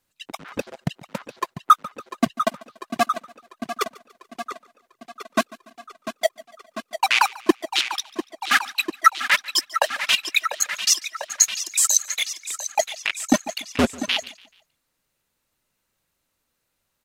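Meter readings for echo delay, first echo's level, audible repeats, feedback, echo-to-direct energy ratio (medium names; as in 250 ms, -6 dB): 144 ms, -22.0 dB, 2, 44%, -21.0 dB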